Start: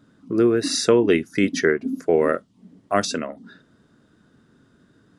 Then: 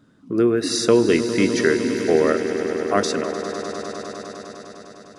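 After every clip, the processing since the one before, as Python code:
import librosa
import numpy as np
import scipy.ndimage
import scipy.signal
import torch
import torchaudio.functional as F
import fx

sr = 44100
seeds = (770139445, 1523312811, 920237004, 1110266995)

y = fx.echo_swell(x, sr, ms=101, loudest=5, wet_db=-14.0)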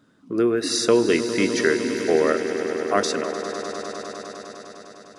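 y = fx.low_shelf(x, sr, hz=220.0, db=-8.5)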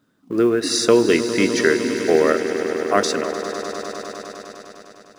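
y = fx.law_mismatch(x, sr, coded='A')
y = y * librosa.db_to_amplitude(3.5)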